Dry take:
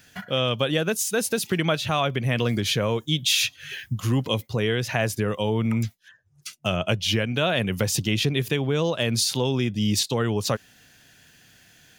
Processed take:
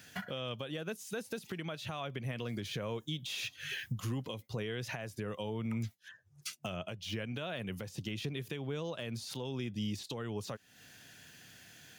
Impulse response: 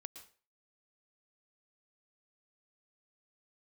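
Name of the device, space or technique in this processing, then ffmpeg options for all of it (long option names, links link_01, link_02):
podcast mastering chain: -af "highpass=75,deesser=0.65,acompressor=threshold=-35dB:ratio=2.5,alimiter=level_in=2dB:limit=-24dB:level=0:latency=1:release=438,volume=-2dB,volume=-1dB" -ar 48000 -c:a libmp3lame -b:a 112k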